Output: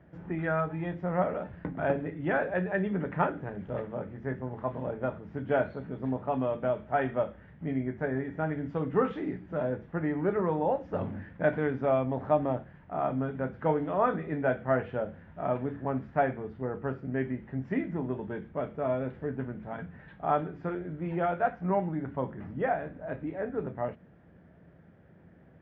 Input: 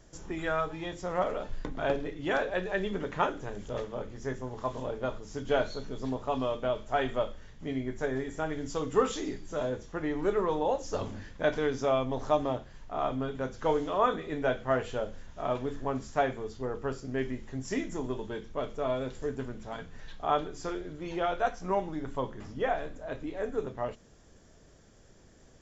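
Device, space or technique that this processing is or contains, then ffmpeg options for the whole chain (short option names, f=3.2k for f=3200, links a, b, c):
bass cabinet: -af "highpass=f=67:w=0.5412,highpass=f=67:w=1.3066,equalizer=f=170:t=q:w=4:g=9,equalizer=f=430:t=q:w=4:g=-4,equalizer=f=1.1k:t=q:w=4:g=-6,lowpass=f=2.1k:w=0.5412,lowpass=f=2.1k:w=1.3066,volume=2dB"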